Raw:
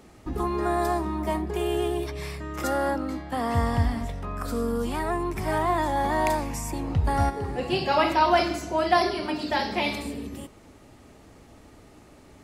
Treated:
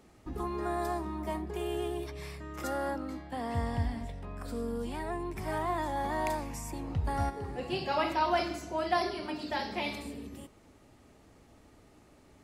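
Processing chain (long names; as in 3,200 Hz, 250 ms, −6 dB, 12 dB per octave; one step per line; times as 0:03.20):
0:03.27–0:05.37: thirty-one-band graphic EQ 1,250 Hz −8 dB, 6,300 Hz −5 dB, 12,500 Hz −8 dB
level −8 dB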